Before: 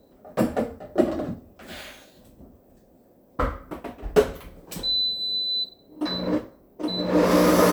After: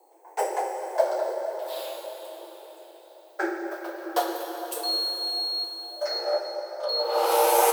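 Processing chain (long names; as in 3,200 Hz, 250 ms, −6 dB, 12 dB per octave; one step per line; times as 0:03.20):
rippled gain that drifts along the octave scale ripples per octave 0.51, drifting −0.38 Hz, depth 9 dB
frequency shifter +290 Hz
drawn EQ curve 120 Hz 0 dB, 2,000 Hz −8 dB, 8,100 Hz +3 dB
0:06.18–0:06.89: treble cut that deepens with the level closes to 2,100 Hz, closed at −22.5 dBFS
echo through a band-pass that steps 223 ms, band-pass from 410 Hz, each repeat 0.7 octaves, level −10 dB
dense smooth reverb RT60 4.6 s, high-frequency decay 0.85×, DRR 2 dB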